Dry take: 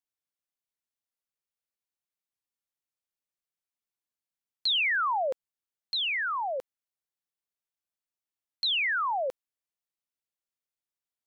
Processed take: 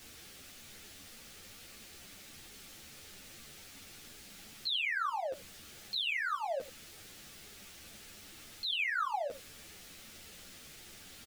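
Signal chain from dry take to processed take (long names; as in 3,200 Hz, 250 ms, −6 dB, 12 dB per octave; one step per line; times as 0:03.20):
converter with a step at zero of −38.5 dBFS
low-pass filter 2,500 Hz 6 dB per octave
parametric band 890 Hz −9.5 dB 2.4 octaves
notch filter 1,000 Hz, Q 6.5
brickwall limiter −36.5 dBFS, peak gain reduction 8 dB
single-tap delay 82 ms −16 dB
string-ensemble chorus
level +8.5 dB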